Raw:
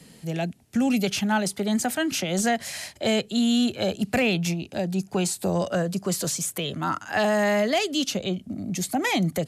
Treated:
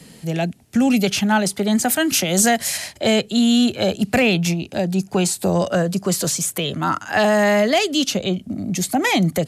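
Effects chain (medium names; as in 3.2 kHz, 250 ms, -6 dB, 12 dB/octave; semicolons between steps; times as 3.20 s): 1.85–2.76 s: treble shelf 9.3 kHz -> 6.1 kHz +11.5 dB; trim +6 dB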